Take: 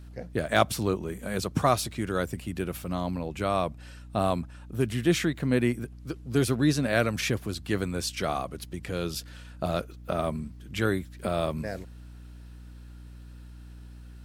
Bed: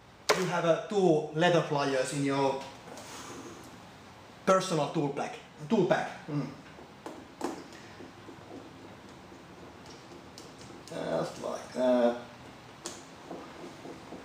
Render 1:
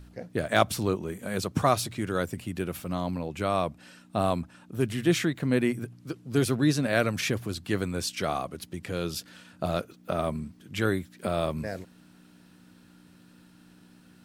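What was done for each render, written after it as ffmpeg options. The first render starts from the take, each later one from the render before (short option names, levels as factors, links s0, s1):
-af "bandreject=f=60:t=h:w=4,bandreject=f=120:t=h:w=4"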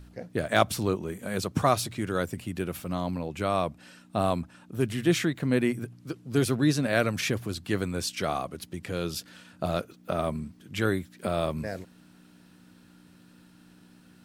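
-af anull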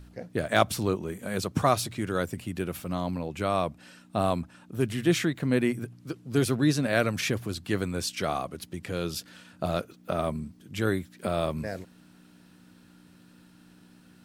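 -filter_complex "[0:a]asettb=1/sr,asplit=3[s0][s1][s2];[s0]atrim=end=10.324[s3];[s1]atrim=start=10.32:end=10.87,asetpts=PTS-STARTPTS,afade=t=in:d=0.004:c=qsin,afade=t=out:st=0.546:d=0.004:c=qsin,equalizer=f=1800:t=o:w=2.3:g=-4[s4];[s2]atrim=start=10.866[s5];[s3][s4]acrossfade=d=0.004:c1=hsin:c2=qsin[s6];[s6][s5]acrossfade=d=0.004:c1=qsin:c2=hsin"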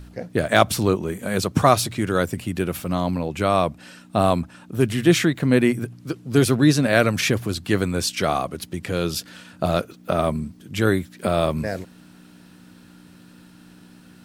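-af "volume=2.37,alimiter=limit=0.891:level=0:latency=1"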